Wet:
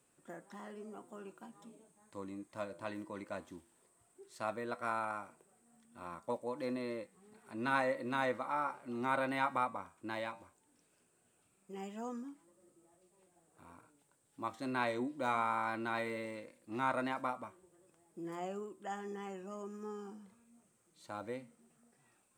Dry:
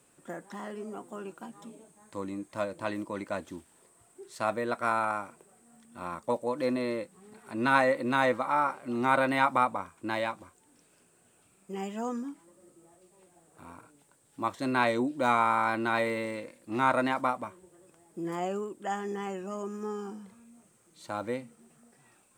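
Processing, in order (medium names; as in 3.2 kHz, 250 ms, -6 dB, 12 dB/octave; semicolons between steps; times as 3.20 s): flange 0.17 Hz, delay 8 ms, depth 3 ms, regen -86%; trim -4.5 dB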